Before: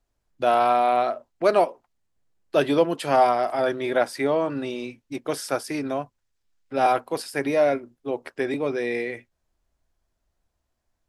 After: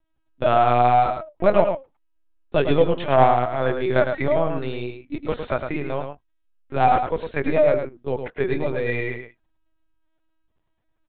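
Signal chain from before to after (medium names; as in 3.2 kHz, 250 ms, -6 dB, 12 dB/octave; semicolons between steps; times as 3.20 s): flange 0.85 Hz, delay 1.9 ms, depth 2 ms, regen -31%; LPC vocoder at 8 kHz pitch kept; on a send: delay 107 ms -7 dB; on the sum: trim +5.5 dB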